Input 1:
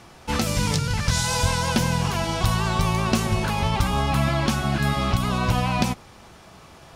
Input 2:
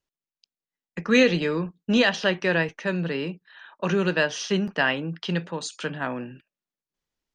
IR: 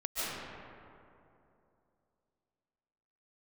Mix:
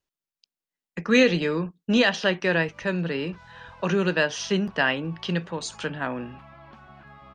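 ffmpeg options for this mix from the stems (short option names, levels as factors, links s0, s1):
-filter_complex "[0:a]lowpass=2200,acrossover=split=670|1500[s0][s1][s2];[s0]acompressor=threshold=0.0158:ratio=4[s3];[s1]acompressor=threshold=0.02:ratio=4[s4];[s2]acompressor=threshold=0.00631:ratio=4[s5];[s3][s4][s5]amix=inputs=3:normalize=0,adelay=2250,volume=0.168[s6];[1:a]volume=1,asplit=2[s7][s8];[s8]apad=whole_len=405768[s9];[s6][s9]sidechaincompress=threshold=0.0316:ratio=8:attack=25:release=221[s10];[s10][s7]amix=inputs=2:normalize=0"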